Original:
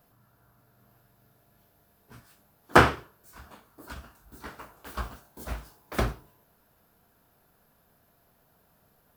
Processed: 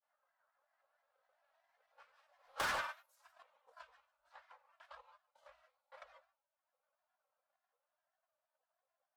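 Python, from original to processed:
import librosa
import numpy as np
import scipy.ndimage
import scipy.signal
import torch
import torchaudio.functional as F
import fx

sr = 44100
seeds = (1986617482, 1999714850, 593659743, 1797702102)

y = fx.doppler_pass(x, sr, speed_mps=19, closest_m=1.2, pass_at_s=2.74)
y = fx.env_lowpass(y, sr, base_hz=3000.0, full_db=-41.0)
y = scipy.signal.sosfilt(scipy.signal.ellip(4, 1.0, 40, 570.0, 'highpass', fs=sr, output='sos'), y)
y = fx.high_shelf(y, sr, hz=11000.0, db=5.5)
y = y + 0.87 * np.pad(y, (int(3.3 * sr / 1000.0), 0))[:len(y)]
y = fx.transient(y, sr, attack_db=9, sustain_db=-3)
y = fx.chorus_voices(y, sr, voices=6, hz=1.4, base_ms=19, depth_ms=3.0, mix_pct=35)
y = fx.rev_gated(y, sr, seeds[0], gate_ms=190, shape='rising', drr_db=12.0)
y = 10.0 ** (-33.0 / 20.0) * np.tanh(y / 10.0 ** (-33.0 / 20.0))
y = fx.granulator(y, sr, seeds[1], grain_ms=100.0, per_s=20.0, spray_ms=23.0, spread_st=3)
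y = fx.band_squash(y, sr, depth_pct=40)
y = y * librosa.db_to_amplitude(7.0)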